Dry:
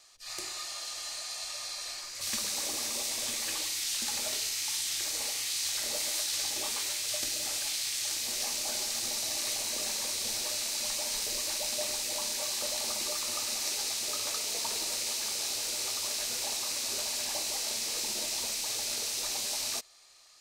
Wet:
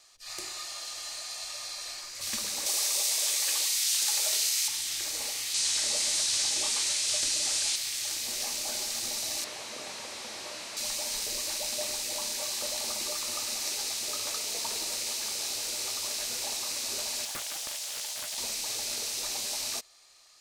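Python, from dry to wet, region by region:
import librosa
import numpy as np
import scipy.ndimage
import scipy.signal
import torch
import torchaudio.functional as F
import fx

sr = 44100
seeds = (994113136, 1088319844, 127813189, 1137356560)

y = fx.chain(x, sr, fx.highpass(hz=400.0, slope=24),
    fx.high_shelf(hz=3300.0, db=7.5), at=(2.66, 4.68))
y = fx.chain(y, sr, fx.high_shelf(hz=2600.0, db=7.5),
    fx.overload_stage(gain_db=22.5),
    fx.lowpass(hz=9600.0, slope=24), at=(5.54, 7.76))
y = fx.chain(y, sr, fx.delta_mod(bps=64000, step_db=-46.0),
    fx.highpass(hz=310.0, slope=6),
    fx.peak_eq(hz=1500.0, db=-3.5, octaves=0.23), at=(9.44, 10.77))
y = fx.chain(y, sr, fx.steep_highpass(hz=540.0, slope=36),
    fx.peak_eq(hz=1900.0, db=-6.0, octaves=2.5),
    fx.doppler_dist(depth_ms=0.51), at=(17.25, 18.38))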